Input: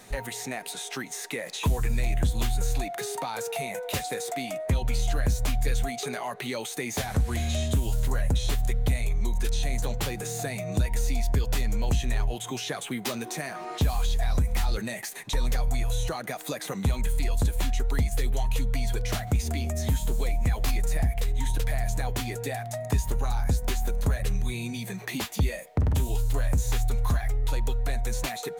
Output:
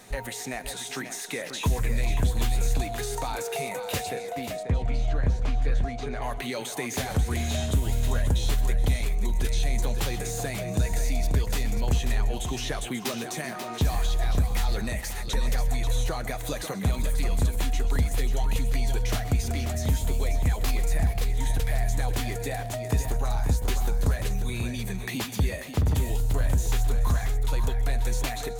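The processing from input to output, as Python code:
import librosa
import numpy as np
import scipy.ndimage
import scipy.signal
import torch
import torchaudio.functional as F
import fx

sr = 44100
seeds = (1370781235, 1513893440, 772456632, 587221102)

y = fx.spacing_loss(x, sr, db_at_10k=22, at=(4.09, 6.22))
y = fx.echo_multitap(y, sr, ms=(125, 136, 426, 538), db=(-18.5, -18.5, -17.5, -8.5))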